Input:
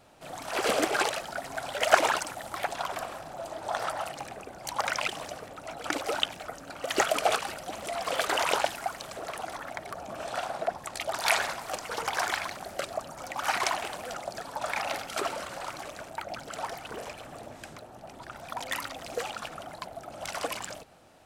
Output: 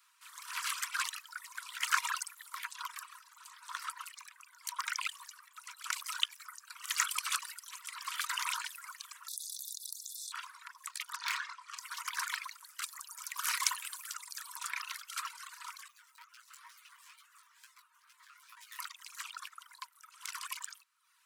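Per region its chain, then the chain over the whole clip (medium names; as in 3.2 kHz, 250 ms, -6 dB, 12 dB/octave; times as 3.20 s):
5.54–7.79 s: treble shelf 4.5 kHz +6 dB + loudspeaker Doppler distortion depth 0.14 ms
9.28–10.32 s: brick-wall FIR band-stop 160–3400 Hz + treble shelf 5.6 kHz +6.5 dB + level flattener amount 100%
11.16–11.78 s: distance through air 99 m + hard clipper -22 dBFS + doubling 28 ms -9 dB
12.82–14.68 s: peaking EQ 14 kHz +9.5 dB 2 oct + transformer saturation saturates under 3.6 kHz
15.88–18.79 s: comb filter that takes the minimum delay 7.7 ms + chorus 2.2 Hz, delay 15.5 ms, depth 6 ms + compression 2:1, threshold -46 dBFS
whole clip: reverb removal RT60 0.74 s; Chebyshev high-pass 950 Hz, order 10; treble shelf 8 kHz +9 dB; trim -5.5 dB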